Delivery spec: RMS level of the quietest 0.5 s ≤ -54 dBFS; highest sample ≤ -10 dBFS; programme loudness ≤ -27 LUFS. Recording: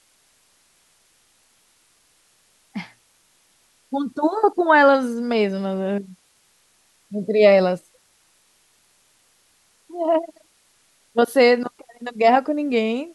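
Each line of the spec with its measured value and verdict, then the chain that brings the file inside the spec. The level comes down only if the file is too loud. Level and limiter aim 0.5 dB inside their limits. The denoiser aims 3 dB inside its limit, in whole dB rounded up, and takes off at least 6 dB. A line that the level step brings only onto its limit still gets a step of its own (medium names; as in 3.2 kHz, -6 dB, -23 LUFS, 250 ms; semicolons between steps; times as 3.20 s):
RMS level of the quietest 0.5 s -61 dBFS: pass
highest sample -2.5 dBFS: fail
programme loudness -19.5 LUFS: fail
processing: trim -8 dB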